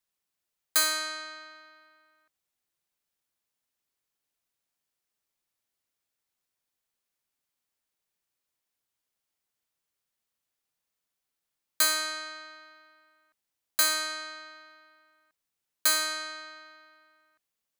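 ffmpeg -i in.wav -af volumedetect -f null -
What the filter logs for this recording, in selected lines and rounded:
mean_volume: -37.4 dB
max_volume: -11.5 dB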